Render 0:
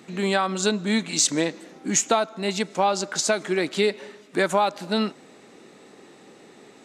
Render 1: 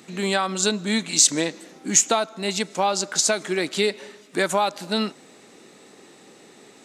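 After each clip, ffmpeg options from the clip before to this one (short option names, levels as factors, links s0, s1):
-af "highshelf=f=3800:g=8,volume=0.891"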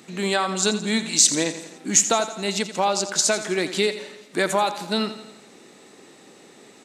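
-af "aecho=1:1:85|170|255|340|425|510:0.237|0.13|0.0717|0.0395|0.0217|0.0119"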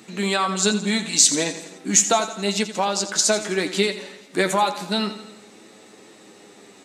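-af "flanger=delay=9.3:depth=1.5:regen=34:speed=0.34:shape=sinusoidal,volume=1.78"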